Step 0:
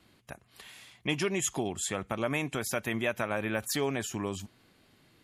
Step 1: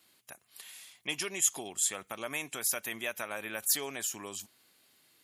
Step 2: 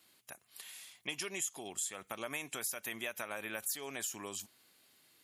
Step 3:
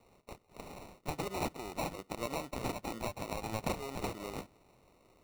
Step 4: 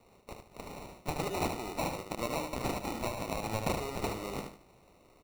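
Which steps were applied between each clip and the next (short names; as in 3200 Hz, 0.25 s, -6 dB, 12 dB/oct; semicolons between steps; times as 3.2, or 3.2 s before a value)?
RIAA curve recording; gain -6 dB
compressor 6:1, threshold -34 dBFS, peak gain reduction 12 dB; gain -1 dB
sample-and-hold 27×; gain +2.5 dB
feedback echo 75 ms, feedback 29%, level -6 dB; gain +2.5 dB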